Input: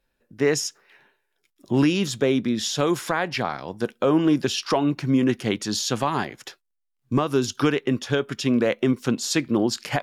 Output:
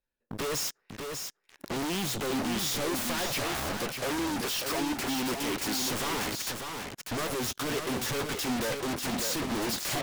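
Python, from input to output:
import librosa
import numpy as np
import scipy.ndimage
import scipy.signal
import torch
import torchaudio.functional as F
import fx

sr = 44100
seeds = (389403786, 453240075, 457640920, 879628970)

y = fx.highpass(x, sr, hz=230.0, slope=24, at=(3.77, 5.85))
y = fx.leveller(y, sr, passes=5)
y = 10.0 ** (-21.5 / 20.0) * (np.abs((y / 10.0 ** (-21.5 / 20.0) + 3.0) % 4.0 - 2.0) - 1.0)
y = y + 10.0 ** (-5.5 / 20.0) * np.pad(y, (int(594 * sr / 1000.0), 0))[:len(y)]
y = y * 10.0 ** (-6.0 / 20.0)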